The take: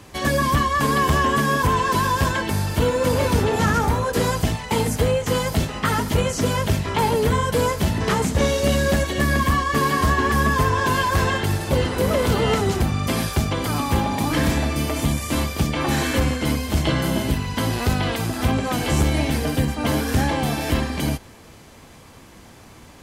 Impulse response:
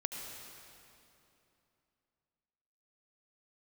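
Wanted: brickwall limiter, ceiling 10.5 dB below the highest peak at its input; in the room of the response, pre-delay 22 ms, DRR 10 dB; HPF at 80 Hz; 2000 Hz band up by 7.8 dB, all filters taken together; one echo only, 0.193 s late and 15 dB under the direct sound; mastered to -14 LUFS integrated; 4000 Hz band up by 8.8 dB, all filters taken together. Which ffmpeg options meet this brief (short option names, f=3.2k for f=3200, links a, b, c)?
-filter_complex "[0:a]highpass=80,equalizer=f=2k:t=o:g=8,equalizer=f=4k:t=o:g=8.5,alimiter=limit=-12.5dB:level=0:latency=1,aecho=1:1:193:0.178,asplit=2[a][b];[1:a]atrim=start_sample=2205,adelay=22[c];[b][c]afir=irnorm=-1:irlink=0,volume=-11.5dB[d];[a][d]amix=inputs=2:normalize=0,volume=7dB"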